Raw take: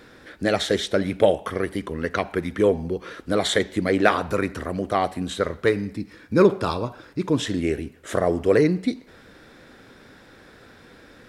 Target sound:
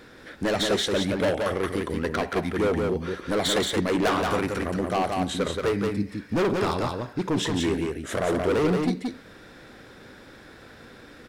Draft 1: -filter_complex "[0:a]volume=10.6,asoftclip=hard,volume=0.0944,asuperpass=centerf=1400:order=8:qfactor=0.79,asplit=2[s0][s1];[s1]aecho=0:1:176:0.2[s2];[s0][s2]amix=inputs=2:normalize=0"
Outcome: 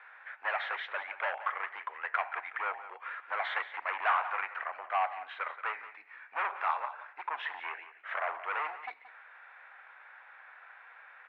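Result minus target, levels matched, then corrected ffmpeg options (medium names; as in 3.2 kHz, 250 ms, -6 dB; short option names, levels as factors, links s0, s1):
echo-to-direct -10.5 dB; 1 kHz band +6.5 dB
-filter_complex "[0:a]volume=10.6,asoftclip=hard,volume=0.0944,asplit=2[s0][s1];[s1]aecho=0:1:176:0.668[s2];[s0][s2]amix=inputs=2:normalize=0"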